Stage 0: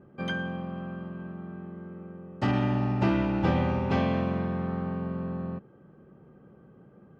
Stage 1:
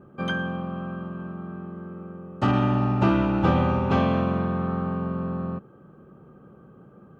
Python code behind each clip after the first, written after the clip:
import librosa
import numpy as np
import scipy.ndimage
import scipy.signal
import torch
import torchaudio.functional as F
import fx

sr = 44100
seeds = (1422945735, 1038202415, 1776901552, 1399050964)

y = fx.graphic_eq_31(x, sr, hz=(1250, 2000, 5000), db=(7, -7, -6))
y = y * 10.0 ** (4.0 / 20.0)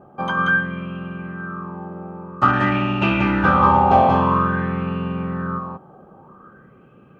y = x + 10.0 ** (-3.0 / 20.0) * np.pad(x, (int(184 * sr / 1000.0), 0))[:len(x)]
y = fx.bell_lfo(y, sr, hz=0.5, low_hz=750.0, high_hz=2700.0, db=18)
y = y * 10.0 ** (-1.0 / 20.0)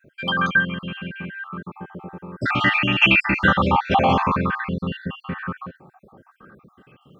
y = fx.spec_dropout(x, sr, seeds[0], share_pct=52)
y = fx.high_shelf_res(y, sr, hz=1600.0, db=9.0, q=1.5)